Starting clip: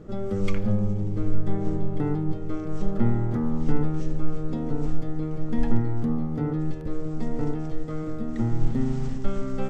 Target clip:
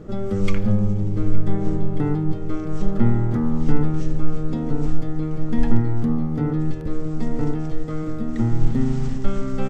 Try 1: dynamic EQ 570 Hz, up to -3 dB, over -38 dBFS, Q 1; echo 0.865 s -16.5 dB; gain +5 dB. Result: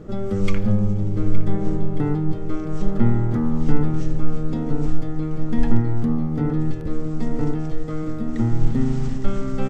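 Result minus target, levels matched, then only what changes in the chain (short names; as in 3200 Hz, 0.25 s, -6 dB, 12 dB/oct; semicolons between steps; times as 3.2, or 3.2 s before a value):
echo-to-direct +8 dB
change: echo 0.865 s -24.5 dB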